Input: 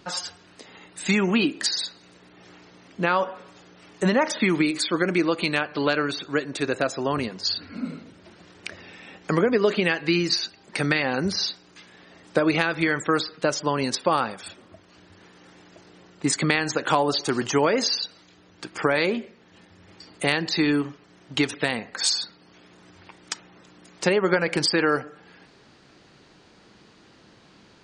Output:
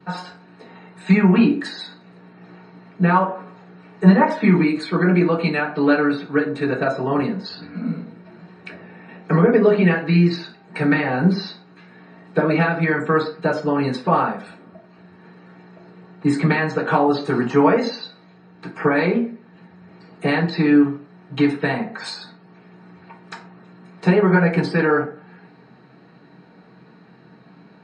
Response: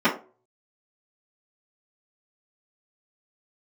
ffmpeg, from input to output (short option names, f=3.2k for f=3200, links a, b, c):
-filter_complex "[0:a]asettb=1/sr,asplit=3[a][b][c];[a]atrim=end=8.684[d];[b]atrim=start=8.68:end=9.08,asetpts=PTS-STARTPTS,afade=t=in:d=0.004:c=qsin,afade=t=out:st=0.396:d=0.004:c=qsin,highshelf=f=2.5k:g=-8.5[e];[c]atrim=start=9.076[f];[d][e]acrossfade=d=0.004:c1=hsin:c2=qsin[g];[g][f]acrossfade=d=0.004:c1=qsin:c2=hsin[h];[1:a]atrim=start_sample=2205,afade=t=out:st=0.17:d=0.01,atrim=end_sample=7938,asetrate=33075,aresample=44100[i];[h][i]afir=irnorm=-1:irlink=0,volume=-16.5dB"